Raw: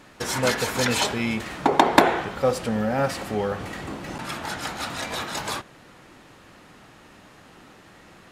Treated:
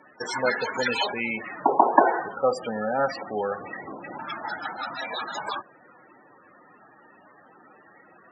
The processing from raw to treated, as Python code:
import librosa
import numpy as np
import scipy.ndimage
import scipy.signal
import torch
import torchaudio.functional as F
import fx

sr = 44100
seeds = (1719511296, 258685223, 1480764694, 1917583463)

y = fx.cvsd(x, sr, bps=64000, at=(0.8, 1.98))
y = fx.spec_topn(y, sr, count=32)
y = fx.weighting(y, sr, curve='A')
y = y * 10.0 ** (2.0 / 20.0)